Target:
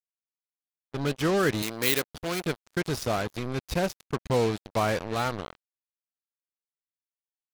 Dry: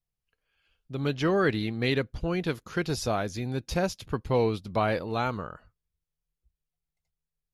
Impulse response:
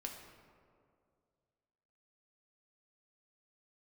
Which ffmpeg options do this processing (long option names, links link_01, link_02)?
-filter_complex "[0:a]acrusher=bits=4:mix=0:aa=0.5,asettb=1/sr,asplit=3[link_01][link_02][link_03];[link_01]atrim=end=1.624[link_04];[link_02]atrim=start=1.62:end=2.43,asetpts=PTS-STARTPTS,afade=type=in:duration=0.004:curve=qsin,afade=type=out:start_time=0.806:duration=0.004:curve=qsin,aemphasis=mode=production:type=bsi[link_05];[link_03]atrim=start=2.426[link_06];[link_04][link_05]acrossfade=duration=0.004:curve1=hsin:curve2=qsin[link_07];[link_07][link_06]acrossfade=duration=0.004:curve1=qsin:curve2=hsin"